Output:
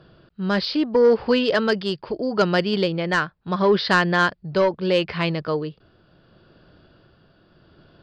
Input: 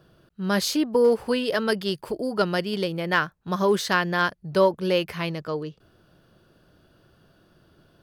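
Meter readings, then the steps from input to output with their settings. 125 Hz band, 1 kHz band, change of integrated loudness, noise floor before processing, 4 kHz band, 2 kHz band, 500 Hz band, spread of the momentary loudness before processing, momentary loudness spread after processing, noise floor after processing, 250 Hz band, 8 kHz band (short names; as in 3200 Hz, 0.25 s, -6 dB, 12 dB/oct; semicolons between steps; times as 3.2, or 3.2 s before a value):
+4.0 dB, +2.5 dB, +3.0 dB, -62 dBFS, +3.0 dB, +3.5 dB, +3.0 dB, 9 LU, 10 LU, -60 dBFS, +3.5 dB, n/a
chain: downsampling 11025 Hz; sine folder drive 4 dB, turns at -6 dBFS; tremolo 0.75 Hz, depth 38%; gain -2 dB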